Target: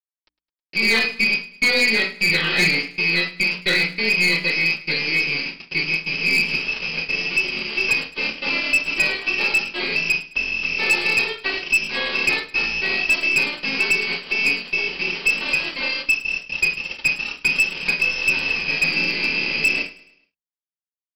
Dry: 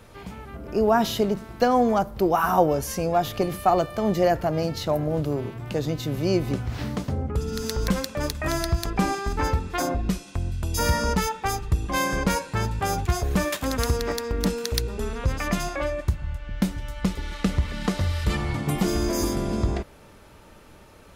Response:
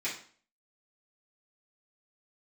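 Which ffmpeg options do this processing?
-filter_complex "[0:a]lowpass=f=2.3k:t=q:w=0.5098,lowpass=f=2.3k:t=q:w=0.6013,lowpass=f=2.3k:t=q:w=0.9,lowpass=f=2.3k:t=q:w=2.563,afreqshift=-2700,equalizer=f=700:w=0.76:g=-10,aeval=exprs='0.422*(cos(1*acos(clip(val(0)/0.422,-1,1)))-cos(1*PI/2))+0.00422*(cos(3*acos(clip(val(0)/0.422,-1,1)))-cos(3*PI/2))+0.106*(cos(4*acos(clip(val(0)/0.422,-1,1)))-cos(4*PI/2))':c=same,equalizer=f=1.8k:w=0.96:g=-5,acrusher=bits=4:mix=0:aa=0.000001[a];[1:a]atrim=start_sample=2205,atrim=end_sample=6174,asetrate=57330,aresample=44100[b];[a][b]afir=irnorm=-1:irlink=0,aresample=11025,aeval=exprs='sgn(val(0))*max(abs(val(0))-0.002,0)':c=same,aresample=44100,bandreject=f=59.27:t=h:w=4,bandreject=f=118.54:t=h:w=4,bandreject=f=177.81:t=h:w=4,bandreject=f=237.08:t=h:w=4,bandreject=f=296.35:t=h:w=4,asplit=2[c][d];[d]acompressor=threshold=-36dB:ratio=8,volume=-1dB[e];[c][e]amix=inputs=2:normalize=0,volume=16.5dB,asoftclip=hard,volume=-16.5dB,aecho=1:1:106|212|318|424:0.112|0.0505|0.0227|0.0102,volume=4.5dB"

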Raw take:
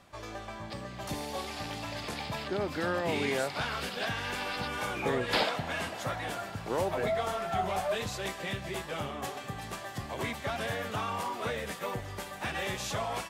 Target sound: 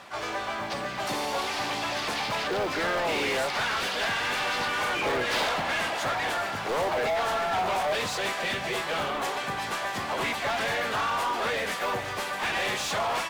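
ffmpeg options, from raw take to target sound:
-filter_complex "[0:a]acrusher=bits=6:mode=log:mix=0:aa=0.000001,asplit=2[a][b];[b]asetrate=55563,aresample=44100,atempo=0.793701,volume=-7dB[c];[a][c]amix=inputs=2:normalize=0,asplit=2[d][e];[e]highpass=f=720:p=1,volume=25dB,asoftclip=type=tanh:threshold=-15dB[f];[d][f]amix=inputs=2:normalize=0,lowpass=f=3.9k:p=1,volume=-6dB,volume=-4.5dB"

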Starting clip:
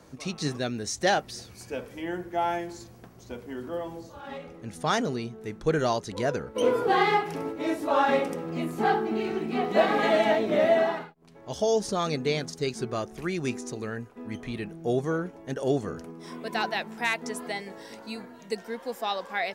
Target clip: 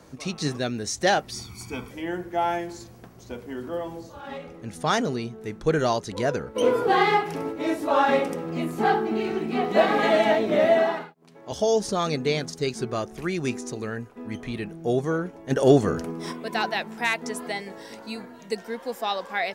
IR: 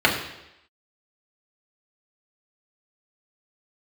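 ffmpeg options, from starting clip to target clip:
-filter_complex "[0:a]asettb=1/sr,asplit=3[a][b][c];[a]atrim=end=1.324[d];[b]atrim=start=1.32:end=1.91,asetpts=PTS-STARTPTS,afade=t=in:d=0.004:c=qsin,afade=t=out:st=0.586:d=0.004:c=qsin,aecho=1:1:0.9:0.88,atrim=end_sample=26019[e];[c]atrim=start=1.906[f];[d][e]acrossfade=d=0.004:c1=hsin:c2=qsin[g];[g][f]acrossfade=d=0.004:c1=qsin:c2=hsin,asettb=1/sr,asplit=3[h][i][j];[h]atrim=end=10.804[k];[i]atrim=start=10.8:end=11.52,asetpts=PTS-STARTPTS,afade=t=in:d=0.004:c=qsin,afade=t=out:st=0.716:d=0.004:c=qsin,highpass=150[l];[j]atrim=start=11.516[m];[k][l]acrossfade=d=0.004:c1=hsin:c2=qsin[n];[n][m]acrossfade=d=0.004:c1=qsin:c2=hsin,asplit=3[o][p][q];[o]afade=t=out:st=15.5:d=0.02[r];[p]acontrast=87,afade=t=in:st=15.5:d=0.02,afade=t=out:st=16.31:d=0.02[s];[q]afade=t=in:st=16.31:d=0.02[t];[r][s][t]amix=inputs=3:normalize=0,volume=2.5dB"

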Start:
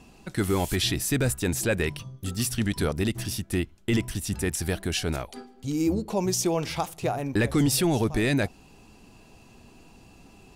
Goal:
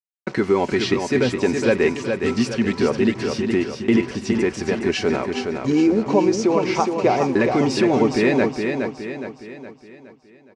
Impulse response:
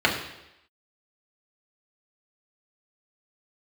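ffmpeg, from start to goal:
-filter_complex "[0:a]agate=range=-14dB:threshold=-43dB:ratio=16:detection=peak,highshelf=f=4k:g=-7.5,aecho=1:1:5.3:0.42,alimiter=limit=-20.5dB:level=0:latency=1:release=454,acontrast=55,acrusher=bits=6:mix=0:aa=0.5,highpass=140,equalizer=f=170:t=q:w=4:g=-10,equalizer=f=250:t=q:w=4:g=8,equalizer=f=450:t=q:w=4:g=8,equalizer=f=1k:t=q:w=4:g=6,equalizer=f=2.2k:t=q:w=4:g=4,equalizer=f=3.5k:t=q:w=4:g=-7,lowpass=f=6k:w=0.5412,lowpass=f=6k:w=1.3066,asplit=2[a][b];[b]aecho=0:1:416|832|1248|1664|2080|2496:0.531|0.244|0.112|0.0517|0.0238|0.0109[c];[a][c]amix=inputs=2:normalize=0,volume=4dB"

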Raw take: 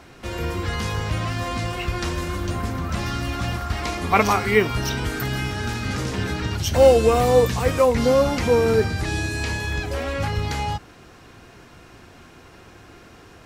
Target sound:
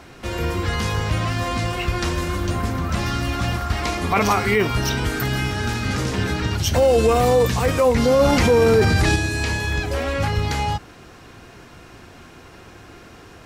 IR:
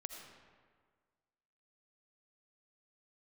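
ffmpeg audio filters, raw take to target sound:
-filter_complex "[0:a]asettb=1/sr,asplit=3[a][b][c];[a]atrim=end=8.194[d];[b]atrim=start=8.19:end=9.16,asetpts=PTS-STARTPTS,afade=t=in:d=0.004:c=qsin,afade=t=out:st=0.966:d=0.004:c=qsin,acontrast=59[e];[c]atrim=start=9.156[f];[d][e]acrossfade=d=0.004:c1=hsin:c2=qsin[g];[g][f]acrossfade=d=0.004:c1=qsin:c2=hsin,alimiter=limit=-11.5dB:level=0:latency=1:release=16,volume=3dB"

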